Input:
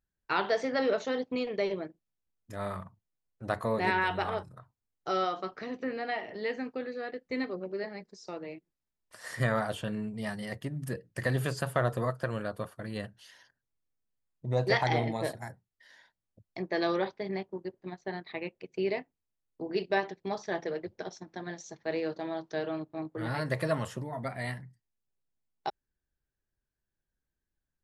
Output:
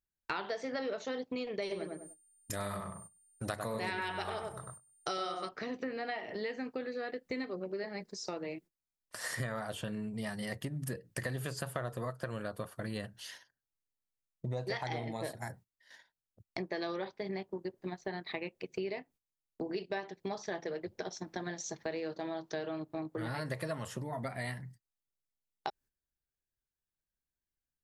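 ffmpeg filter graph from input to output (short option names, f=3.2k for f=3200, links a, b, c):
-filter_complex "[0:a]asettb=1/sr,asplit=3[a][b][c];[a]atrim=end=1.624[d];[b]atrim=start=1.62:end=5.49,asetpts=PTS-STARTPTS,afade=t=in:d=0.004:c=qsin,afade=t=out:st=3.866:d=0.004:c=qsin,highshelf=f=3.1k:g=11.5,aeval=exprs='val(0)+0.000891*sin(2*PI*9000*n/s)':c=same,asplit=2[e][f];[f]adelay=99,lowpass=f=1.2k:p=1,volume=-3dB,asplit=2[g][h];[h]adelay=99,lowpass=f=1.2k:p=1,volume=0.24,asplit=2[i][j];[j]adelay=99,lowpass=f=1.2k:p=1,volume=0.24[k];[e][g][i][k]amix=inputs=4:normalize=0,atrim=end_sample=170667[l];[c]atrim=start=5.486[m];[d][l]acrossfade=d=0.004:c1=hsin:c2=qsin[n];[n][m]acrossfade=d=0.004:c1=qsin:c2=hsin,agate=range=-15dB:threshold=-56dB:ratio=16:detection=peak,highshelf=f=4.9k:g=5.5,acompressor=threshold=-42dB:ratio=5,volume=6dB"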